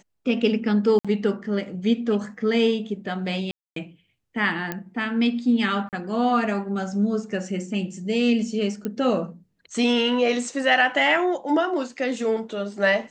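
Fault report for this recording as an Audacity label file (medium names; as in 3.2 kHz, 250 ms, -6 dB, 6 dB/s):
0.990000	1.050000	dropout 56 ms
3.510000	3.760000	dropout 253 ms
4.720000	4.720000	pop -13 dBFS
5.890000	5.930000	dropout 38 ms
8.850000	8.850000	pop -16 dBFS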